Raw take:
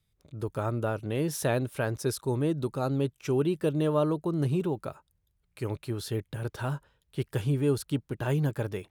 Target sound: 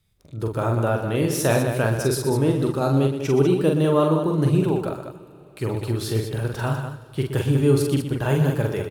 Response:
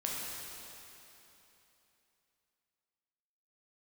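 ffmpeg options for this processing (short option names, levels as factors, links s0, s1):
-filter_complex "[0:a]aecho=1:1:44|121|197:0.631|0.335|0.398,asplit=2[s0][s1];[1:a]atrim=start_sample=2205[s2];[s1][s2]afir=irnorm=-1:irlink=0,volume=0.141[s3];[s0][s3]amix=inputs=2:normalize=0,volume=1.78"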